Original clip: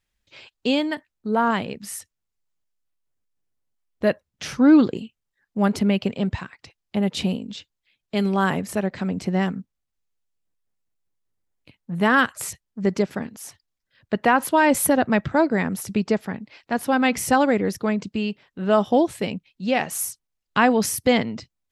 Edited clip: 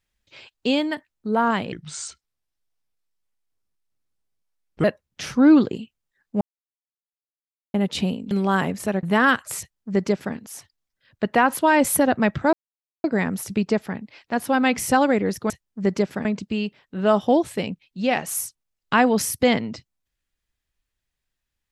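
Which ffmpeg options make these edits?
ffmpeg -i in.wav -filter_complex "[0:a]asplit=10[link_01][link_02][link_03][link_04][link_05][link_06][link_07][link_08][link_09][link_10];[link_01]atrim=end=1.724[link_11];[link_02]atrim=start=1.72:end=4.06,asetpts=PTS-STARTPTS,asetrate=33075,aresample=44100[link_12];[link_03]atrim=start=4.056:end=5.63,asetpts=PTS-STARTPTS,afade=type=out:start_time=1.57:duration=0.004:curve=hsin[link_13];[link_04]atrim=start=5.63:end=6.96,asetpts=PTS-STARTPTS,volume=0[link_14];[link_05]atrim=start=6.96:end=7.532,asetpts=PTS-STARTPTS,afade=type=in:duration=0.004:curve=hsin[link_15];[link_06]atrim=start=8.198:end=8.922[link_16];[link_07]atrim=start=11.928:end=15.43,asetpts=PTS-STARTPTS,afade=type=out:start_time=3.498:duration=0.004:curve=hsin,apad=pad_dur=0.51[link_17];[link_08]atrim=start=15.43:end=17.892,asetpts=PTS-STARTPTS,afade=type=in:duration=0.004:curve=hsin[link_18];[link_09]atrim=start=12.498:end=13.252[link_19];[link_10]atrim=start=17.888[link_20];[link_11][link_12]acrossfade=duration=0.004:curve1=hsin:curve2=hsin[link_21];[link_13][link_14][link_15]concat=n=3:v=0:a=1[link_22];[link_21][link_22]acrossfade=duration=0.004:curve1=hsin:curve2=hsin[link_23];[link_23][link_16]acrossfade=duration=0.004:curve1=hsin:curve2=hsin[link_24];[link_17][link_18]concat=n=2:v=0:a=1[link_25];[link_24][link_25]acrossfade=duration=0.004:curve1=hsin:curve2=hsin[link_26];[link_26][link_19]acrossfade=duration=0.004:curve1=hsin:curve2=hsin[link_27];[link_27][link_20]acrossfade=duration=0.004:curve1=hsin:curve2=hsin" out.wav

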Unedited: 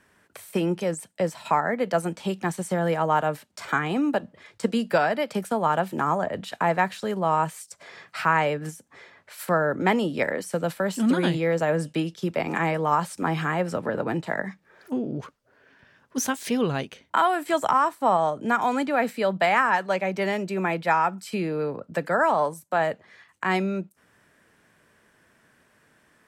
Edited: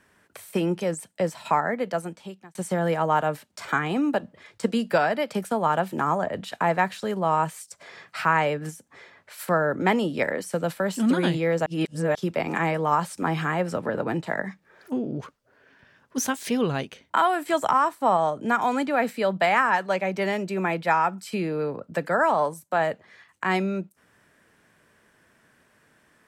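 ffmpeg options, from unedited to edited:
ffmpeg -i in.wav -filter_complex "[0:a]asplit=4[link_01][link_02][link_03][link_04];[link_01]atrim=end=2.55,asetpts=PTS-STARTPTS,afade=type=out:start_time=1.62:duration=0.93[link_05];[link_02]atrim=start=2.55:end=11.662,asetpts=PTS-STARTPTS,afade=type=in:duration=0.004:curve=hsin[link_06];[link_03]atrim=start=11.658:end=12.152,asetpts=PTS-STARTPTS,areverse[link_07];[link_04]atrim=start=12.148[link_08];[link_05][link_06]concat=n=2:v=0:a=1[link_09];[link_09][link_07]acrossfade=duration=0.004:curve1=hsin:curve2=hsin[link_10];[link_10][link_08]acrossfade=duration=0.004:curve1=hsin:curve2=hsin" out.wav

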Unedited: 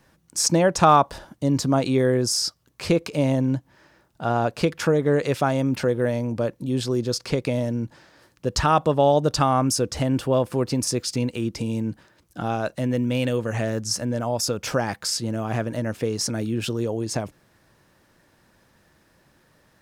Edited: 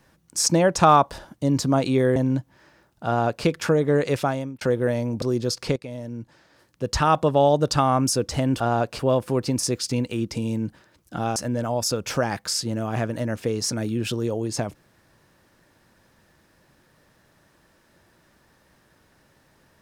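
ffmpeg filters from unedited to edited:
ffmpeg -i in.wav -filter_complex "[0:a]asplit=8[link_01][link_02][link_03][link_04][link_05][link_06][link_07][link_08];[link_01]atrim=end=2.162[link_09];[link_02]atrim=start=3.338:end=5.79,asetpts=PTS-STARTPTS,afade=type=out:start_time=2.032:duration=0.42[link_10];[link_03]atrim=start=5.79:end=6.402,asetpts=PTS-STARTPTS,afade=type=in:duration=0.004:curve=hsin[link_11];[link_04]atrim=start=6.848:end=7.39,asetpts=PTS-STARTPTS,afade=type=out:start_time=0.538:duration=0.004:curve=hsin:silence=0.199526[link_12];[link_05]atrim=start=7.39:end=10.232,asetpts=PTS-STARTPTS,afade=type=in:duration=1.39:silence=0.199526[link_13];[link_06]atrim=start=4.238:end=4.632[link_14];[link_07]atrim=start=10.228:end=12.602[link_15];[link_08]atrim=start=13.928[link_16];[link_10][link_11]concat=n=2:v=0:a=1[link_17];[link_09][link_17]acrossfade=duration=0.004:curve1=hsin:curve2=hsin[link_18];[link_12][link_13]concat=n=2:v=0:a=1[link_19];[link_18][link_19]acrossfade=duration=0.004:curve1=hsin:curve2=hsin[link_20];[link_20][link_14]acrossfade=duration=0.004:curve1=hsin:curve2=hsin[link_21];[link_21][link_15]acrossfade=duration=0.004:curve1=hsin:curve2=hsin[link_22];[link_22][link_16]acrossfade=duration=0.004:curve1=hsin:curve2=hsin" out.wav

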